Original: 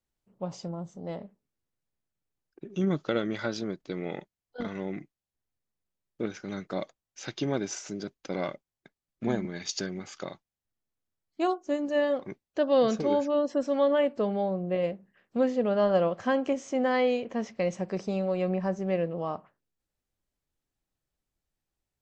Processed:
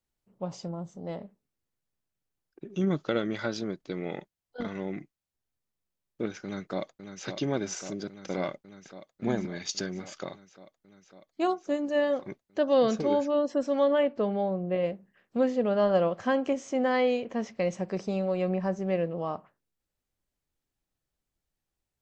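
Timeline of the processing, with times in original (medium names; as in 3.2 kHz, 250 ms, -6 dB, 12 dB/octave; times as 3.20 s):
6.44–7.26 s: echo throw 550 ms, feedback 80%, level -8 dB
14.03–14.86 s: low-pass 4.4 kHz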